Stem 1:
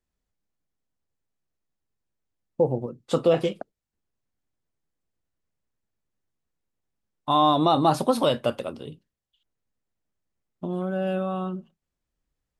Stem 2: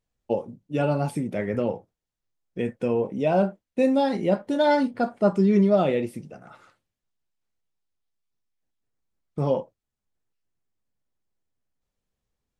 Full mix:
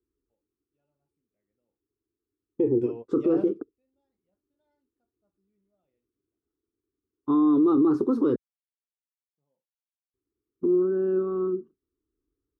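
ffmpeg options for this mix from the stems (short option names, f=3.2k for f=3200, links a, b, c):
-filter_complex "[0:a]firequalizer=gain_entry='entry(110,0);entry(170,-11);entry(300,13);entry(420,12);entry(610,-25);entry(1200,-2);entry(2000,-20);entry(2900,-29);entry(5600,-19);entry(8900,-29)':delay=0.05:min_phase=1,volume=-0.5dB,asplit=3[a][b][c];[a]atrim=end=8.36,asetpts=PTS-STARTPTS,afade=t=out:st=8.356:d=0.004:c=hsin[d];[b]atrim=start=8.36:end=10.14,asetpts=PTS-STARTPTS,volume=0[e];[c]atrim=start=10.14,asetpts=PTS-STARTPTS,afade=t=in:d=0.004:c=hsin[f];[d][e][f]concat=n=3:v=0:a=1,asplit=2[g][h];[1:a]volume=-17dB[i];[h]apad=whole_len=555562[j];[i][j]sidechaingate=range=-41dB:threshold=-40dB:ratio=16:detection=peak[k];[g][k]amix=inputs=2:normalize=0,highpass=43,alimiter=limit=-15dB:level=0:latency=1:release=23"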